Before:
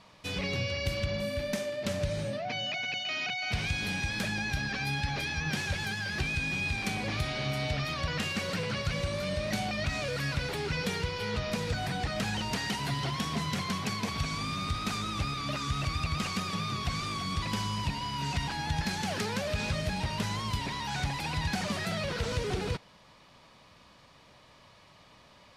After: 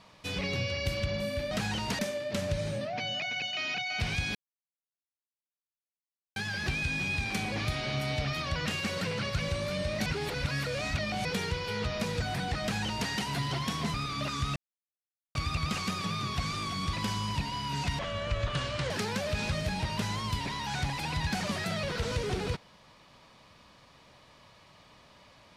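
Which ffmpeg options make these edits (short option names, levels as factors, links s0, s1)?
-filter_complex "[0:a]asplit=11[s0][s1][s2][s3][s4][s5][s6][s7][s8][s9][s10];[s0]atrim=end=1.512[s11];[s1]atrim=start=12.138:end=12.622[s12];[s2]atrim=start=1.508:end=3.87,asetpts=PTS-STARTPTS,afade=t=out:st=2.358:d=0.004:c=hsin[s13];[s3]atrim=start=3.87:end=5.88,asetpts=PTS-STARTPTS,volume=0[s14];[s4]atrim=start=5.88:end=9.582,asetpts=PTS-STARTPTS,afade=t=in:d=0.004:c=hsin[s15];[s5]atrim=start=9.578:end=10.772,asetpts=PTS-STARTPTS,areverse[s16];[s6]atrim=start=10.768:end=13.462[s17];[s7]atrim=start=15.218:end=15.84,asetpts=PTS-STARTPTS,afade=t=out:st=0.618:d=0.004:c=hsin,apad=pad_dur=0.79[s18];[s8]atrim=start=15.84:end=18.484,asetpts=PTS-STARTPTS,afade=t=in:d=0.004:c=hsin[s19];[s9]atrim=start=18.48:end=19.11,asetpts=PTS-STARTPTS,asetrate=30429,aresample=44100,atrim=end_sample=40265,asetpts=PTS-STARTPTS[s20];[s10]atrim=start=19.106[s21];[s11][s12]acrossfade=d=0.004:c1=hsin:c2=hsin[s22];[s13][s14][s15]concat=n=3:v=0:a=1[s23];[s22][s23]acrossfade=d=0.004:c1=hsin:c2=hsin[s24];[s24][s16]acrossfade=d=0.004:c1=hsin:c2=hsin[s25];[s25][s17]acrossfade=d=0.004:c1=hsin:c2=hsin[s26];[s18][s19]concat=n=2:v=0:a=1[s27];[s26][s27]acrossfade=d=0.004:c1=hsin:c2=hsin[s28];[s28][s20]acrossfade=d=0.004:c1=hsin:c2=hsin[s29];[s29][s21]acrossfade=d=0.004:c1=hsin:c2=hsin"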